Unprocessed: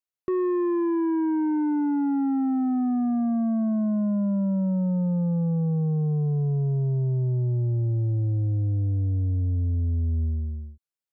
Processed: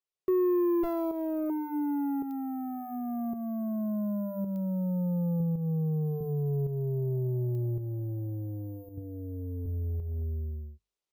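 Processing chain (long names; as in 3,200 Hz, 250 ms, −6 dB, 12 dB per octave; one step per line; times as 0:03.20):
0:00.83–0:01.50: lower of the sound and its delayed copy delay 7 ms
0:08.97–0:09.66: comb filter 4.2 ms, depth 76%
bad sample-rate conversion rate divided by 3×, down none, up hold
0:05.40–0:06.21: low-shelf EQ 210 Hz +6.5 dB
mains-hum notches 50/100/150/200/250/300 Hz
shaped tremolo saw up 0.9 Hz, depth 55%
downward compressor 16 to 1, threshold −26 dBFS, peak gain reduction 7 dB
thirty-one-band graphic EQ 100 Hz −9 dB, 250 Hz −7 dB, 400 Hz +8 dB, 1,600 Hz −7 dB
digital clicks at 0:02.31/0:04.56/0:07.55, −33 dBFS
AAC 160 kbit/s 48,000 Hz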